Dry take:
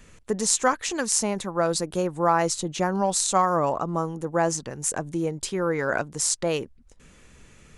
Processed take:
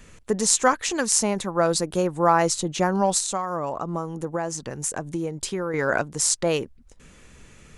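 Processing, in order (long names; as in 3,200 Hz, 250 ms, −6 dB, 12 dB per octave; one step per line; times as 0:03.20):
0:03.18–0:05.74: downward compressor 5 to 1, threshold −27 dBFS, peak gain reduction 10.5 dB
level +2.5 dB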